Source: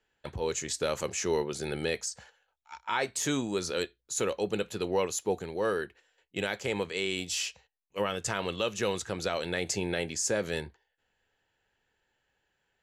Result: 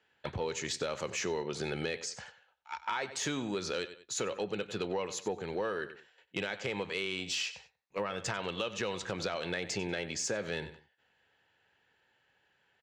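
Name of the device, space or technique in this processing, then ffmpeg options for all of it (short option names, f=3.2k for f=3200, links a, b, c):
AM radio: -filter_complex "[0:a]asettb=1/sr,asplit=3[a][b][c];[a]atrim=end=7.464[d];[b]atrim=start=7.46:end=8.18,asetpts=PTS-STARTPTS,afade=t=in:d=0.004:c=qsin,afade=t=out:st=0.716:d=0.004:c=qsin,bandreject=f=3k:w=5.5[e];[c]atrim=start=8.176[f];[d][e]acrossfade=d=0.004:c1=hsin:c2=qsin[g];[g][f]acrossfade=d=0.004:c1=qsin:c2=hsin,highpass=110,lowpass=4.4k,equalizer=f=320:t=o:w=2.3:g=-4,aecho=1:1:95|190:0.141|0.0325,acompressor=threshold=-37dB:ratio=6,asoftclip=type=tanh:threshold=-28dB,volume=6.5dB"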